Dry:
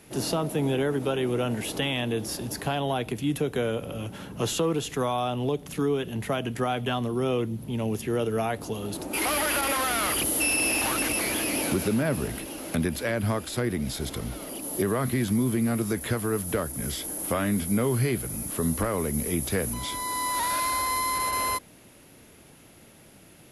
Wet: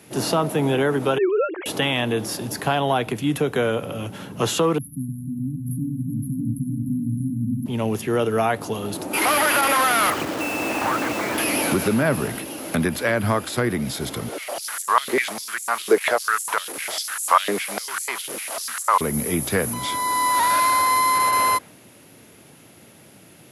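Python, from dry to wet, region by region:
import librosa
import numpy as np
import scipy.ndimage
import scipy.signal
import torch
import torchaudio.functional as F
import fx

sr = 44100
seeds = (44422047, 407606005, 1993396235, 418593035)

y = fx.chain(x, sr, fx.sine_speech(),
    fx.brickwall_highpass(low_hz=290.0),
    fx.peak_eq(hz=2800.0, db=-4.5, octaves=0.38), at=(1.18, 1.66))
y = fx.chain(y, sr, fx.brickwall_bandstop(low_hz=290.0, high_hz=9800.0),
    fx.echo_opening(ms=303, hz=200, octaves=1, feedback_pct=70, wet_db=0), at=(4.78, 7.66))
y = fx.chain(y, sr, fx.lowpass(hz=1700.0, slope=12),
    fx.quant_dither(seeds[0], bits=6, dither='none'), at=(10.1, 11.38))
y = fx.chain(y, sr, fx.cvsd(bps=64000),
    fx.filter_held_highpass(hz=10.0, low_hz=430.0, high_hz=7400.0), at=(14.28, 19.01))
y = scipy.signal.sosfilt(scipy.signal.butter(4, 90.0, 'highpass', fs=sr, output='sos'), y)
y = fx.dynamic_eq(y, sr, hz=1200.0, q=0.73, threshold_db=-42.0, ratio=4.0, max_db=6)
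y = F.gain(torch.from_numpy(y), 4.0).numpy()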